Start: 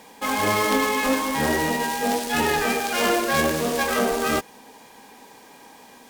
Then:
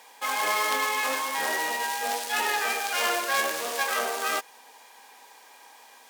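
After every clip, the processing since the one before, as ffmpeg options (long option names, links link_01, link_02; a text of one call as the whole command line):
ffmpeg -i in.wav -af "highpass=730,volume=-2dB" out.wav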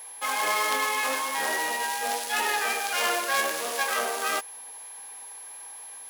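ffmpeg -i in.wav -af "aeval=exprs='val(0)+0.01*sin(2*PI*11000*n/s)':channel_layout=same" out.wav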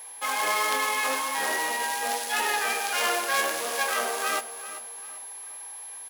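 ffmpeg -i in.wav -af "aecho=1:1:392|784|1176:0.2|0.0718|0.0259" out.wav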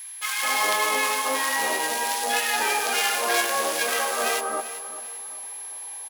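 ffmpeg -i in.wav -filter_complex "[0:a]acrossover=split=1300[link_01][link_02];[link_01]adelay=210[link_03];[link_03][link_02]amix=inputs=2:normalize=0,volume=4dB" out.wav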